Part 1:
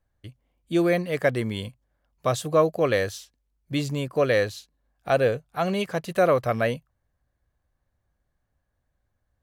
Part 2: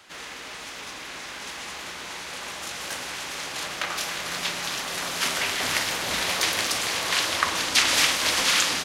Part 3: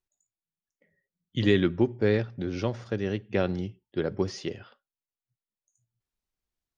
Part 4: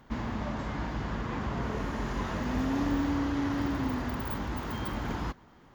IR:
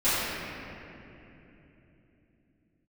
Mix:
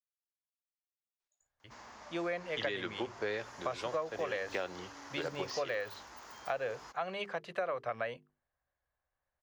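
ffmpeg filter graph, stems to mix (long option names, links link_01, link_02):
-filter_complex "[0:a]bass=frequency=250:gain=7,treble=frequency=4000:gain=-12,bandreject=frequency=50:width_type=h:width=6,bandreject=frequency=100:width_type=h:width=6,bandreject=frequency=150:width_type=h:width=6,bandreject=frequency=200:width_type=h:width=6,bandreject=frequency=250:width_type=h:width=6,bandreject=frequency=300:width_type=h:width=6,bandreject=frequency=350:width_type=h:width=6,bandreject=frequency=400:width_type=h:width=6,bandreject=frequency=450:width_type=h:width=6,adelay=1400,volume=-4dB[link_01];[2:a]adelay=1200,volume=-0.5dB[link_02];[3:a]aexciter=amount=3:drive=8.3:freq=4900,adelay=1600,volume=-11.5dB[link_03];[link_01][link_02][link_03]amix=inputs=3:normalize=0,acrossover=split=500 7800:gain=0.0891 1 0.126[link_04][link_05][link_06];[link_04][link_05][link_06]amix=inputs=3:normalize=0,acompressor=threshold=-32dB:ratio=6"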